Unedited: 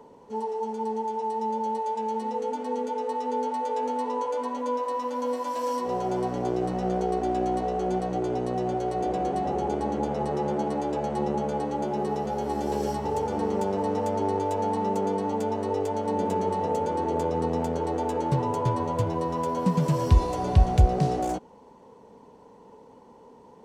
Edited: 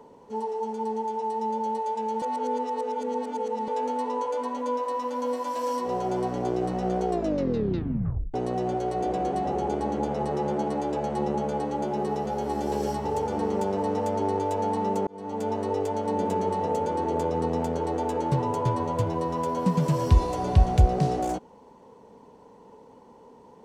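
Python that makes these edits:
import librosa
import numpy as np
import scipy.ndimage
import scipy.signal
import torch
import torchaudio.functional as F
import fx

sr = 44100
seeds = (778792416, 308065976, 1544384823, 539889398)

y = fx.edit(x, sr, fx.reverse_span(start_s=2.22, length_s=1.46),
    fx.tape_stop(start_s=7.09, length_s=1.25),
    fx.fade_in_span(start_s=15.07, length_s=0.43), tone=tone)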